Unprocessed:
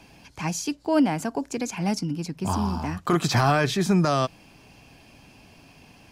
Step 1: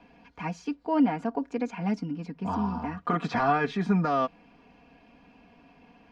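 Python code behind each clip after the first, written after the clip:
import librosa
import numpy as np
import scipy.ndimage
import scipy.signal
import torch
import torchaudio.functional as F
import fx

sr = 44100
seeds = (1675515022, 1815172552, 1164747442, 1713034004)

y = scipy.signal.sosfilt(scipy.signal.butter(2, 2100.0, 'lowpass', fs=sr, output='sos'), x)
y = fx.low_shelf(y, sr, hz=120.0, db=-7.5)
y = y + 0.77 * np.pad(y, (int(4.2 * sr / 1000.0), 0))[:len(y)]
y = y * librosa.db_to_amplitude(-4.0)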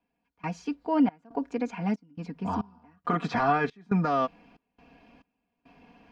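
y = fx.step_gate(x, sr, bpm=69, pattern='..xxx.xxx.xx', floor_db=-24.0, edge_ms=4.5)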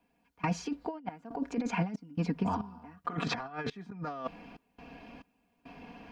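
y = fx.over_compress(x, sr, threshold_db=-32.0, ratio=-0.5)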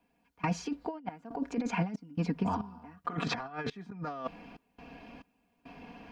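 y = x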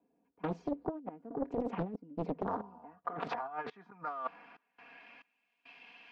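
y = fx.filter_sweep_bandpass(x, sr, from_hz=370.0, to_hz=2800.0, start_s=1.92, end_s=5.73, q=1.6)
y = fx.doppler_dist(y, sr, depth_ms=0.97)
y = y * librosa.db_to_amplitude(3.5)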